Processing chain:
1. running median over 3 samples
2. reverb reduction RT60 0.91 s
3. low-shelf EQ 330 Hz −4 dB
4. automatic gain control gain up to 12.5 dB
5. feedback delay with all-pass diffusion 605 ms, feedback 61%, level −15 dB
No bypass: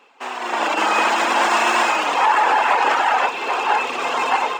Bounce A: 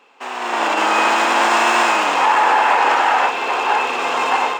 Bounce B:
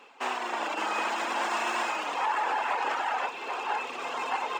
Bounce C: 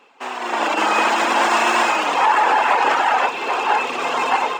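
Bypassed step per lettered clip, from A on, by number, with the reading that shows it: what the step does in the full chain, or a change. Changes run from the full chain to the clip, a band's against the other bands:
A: 2, change in integrated loudness +2.0 LU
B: 4, change in momentary loudness spread −1 LU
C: 3, 250 Hz band +2.0 dB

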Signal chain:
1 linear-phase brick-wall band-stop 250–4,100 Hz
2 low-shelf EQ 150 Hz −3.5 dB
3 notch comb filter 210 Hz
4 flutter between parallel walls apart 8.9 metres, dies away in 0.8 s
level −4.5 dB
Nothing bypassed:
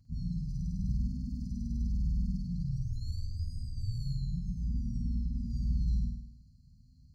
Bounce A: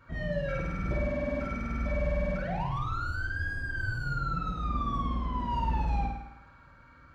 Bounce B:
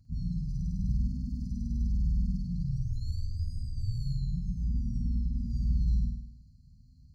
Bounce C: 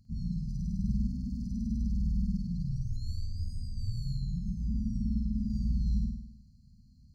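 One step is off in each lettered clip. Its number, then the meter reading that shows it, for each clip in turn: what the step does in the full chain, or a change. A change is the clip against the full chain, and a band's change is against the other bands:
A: 1, change in momentary loudness spread −3 LU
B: 2, change in integrated loudness +2.5 LU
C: 3, change in integrated loudness +1.5 LU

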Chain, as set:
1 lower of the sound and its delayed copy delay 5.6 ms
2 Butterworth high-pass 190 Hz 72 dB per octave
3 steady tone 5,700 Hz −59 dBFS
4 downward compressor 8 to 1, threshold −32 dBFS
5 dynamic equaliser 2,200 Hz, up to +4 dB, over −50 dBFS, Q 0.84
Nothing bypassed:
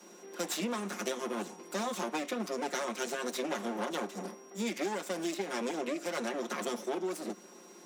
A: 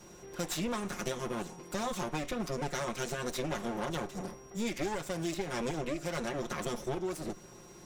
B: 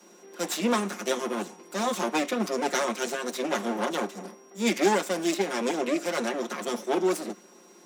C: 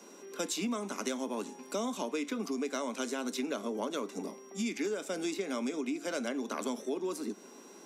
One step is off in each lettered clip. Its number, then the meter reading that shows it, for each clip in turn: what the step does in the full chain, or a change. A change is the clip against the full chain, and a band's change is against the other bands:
2, 125 Hz band +10.5 dB
4, average gain reduction 5.0 dB
1, 250 Hz band +4.0 dB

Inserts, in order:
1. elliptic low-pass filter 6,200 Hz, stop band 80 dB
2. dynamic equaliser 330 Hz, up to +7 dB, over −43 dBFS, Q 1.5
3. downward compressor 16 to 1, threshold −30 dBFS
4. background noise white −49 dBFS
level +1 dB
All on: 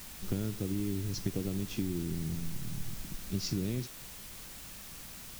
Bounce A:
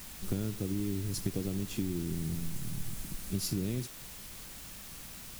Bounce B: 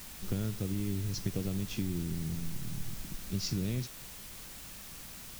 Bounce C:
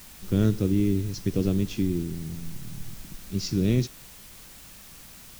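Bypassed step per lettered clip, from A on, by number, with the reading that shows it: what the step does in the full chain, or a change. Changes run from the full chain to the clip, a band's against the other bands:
1, 8 kHz band +2.0 dB
2, 500 Hz band −2.5 dB
3, average gain reduction 4.0 dB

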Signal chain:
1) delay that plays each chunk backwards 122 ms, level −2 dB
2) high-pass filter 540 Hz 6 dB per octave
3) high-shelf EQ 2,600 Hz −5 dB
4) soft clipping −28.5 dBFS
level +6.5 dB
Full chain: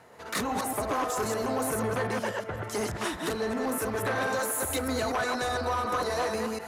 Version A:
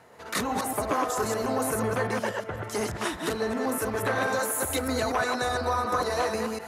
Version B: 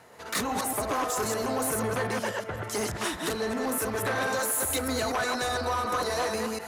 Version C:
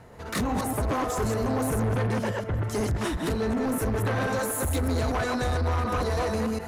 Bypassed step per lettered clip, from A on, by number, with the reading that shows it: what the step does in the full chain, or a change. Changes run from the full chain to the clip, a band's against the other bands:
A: 4, distortion level −16 dB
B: 3, 8 kHz band +4.0 dB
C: 2, 125 Hz band +12.5 dB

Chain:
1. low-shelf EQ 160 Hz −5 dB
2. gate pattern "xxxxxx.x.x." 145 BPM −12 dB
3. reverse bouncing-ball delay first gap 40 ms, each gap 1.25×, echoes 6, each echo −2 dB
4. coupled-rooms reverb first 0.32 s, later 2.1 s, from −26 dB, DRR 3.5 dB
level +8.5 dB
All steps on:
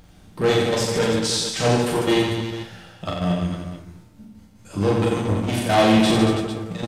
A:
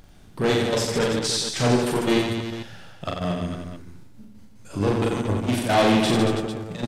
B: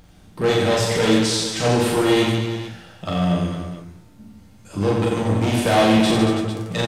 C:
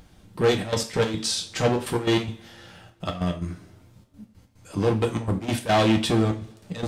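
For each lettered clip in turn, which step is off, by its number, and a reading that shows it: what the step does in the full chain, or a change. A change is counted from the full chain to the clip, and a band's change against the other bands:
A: 4, echo-to-direct ratio 4.5 dB to 2.0 dB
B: 2, change in momentary loudness spread −2 LU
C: 3, echo-to-direct ratio 4.5 dB to −3.5 dB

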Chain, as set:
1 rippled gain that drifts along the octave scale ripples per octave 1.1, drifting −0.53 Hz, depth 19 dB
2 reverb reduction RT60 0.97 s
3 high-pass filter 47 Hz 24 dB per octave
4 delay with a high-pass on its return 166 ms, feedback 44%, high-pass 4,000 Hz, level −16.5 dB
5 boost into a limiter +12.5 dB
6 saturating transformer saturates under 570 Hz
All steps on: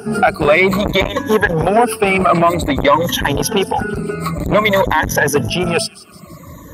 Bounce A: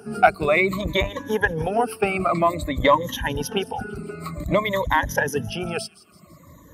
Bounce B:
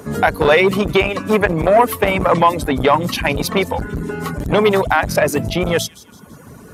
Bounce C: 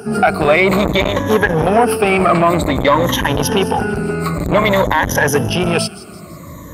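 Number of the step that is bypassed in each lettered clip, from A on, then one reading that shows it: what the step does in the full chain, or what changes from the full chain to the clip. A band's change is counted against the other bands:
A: 5, change in crest factor +7.5 dB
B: 1, 8 kHz band −3.0 dB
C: 2, 125 Hz band +2.0 dB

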